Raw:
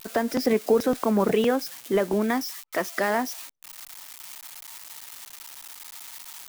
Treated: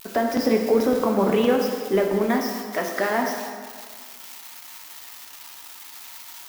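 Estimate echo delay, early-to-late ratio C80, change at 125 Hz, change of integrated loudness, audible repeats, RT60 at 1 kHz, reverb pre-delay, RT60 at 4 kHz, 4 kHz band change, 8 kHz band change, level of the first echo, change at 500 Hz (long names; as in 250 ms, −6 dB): no echo audible, 5.5 dB, +2.0 dB, +2.5 dB, no echo audible, 1.9 s, 3 ms, 1.4 s, +1.5 dB, −0.5 dB, no echo audible, +3.0 dB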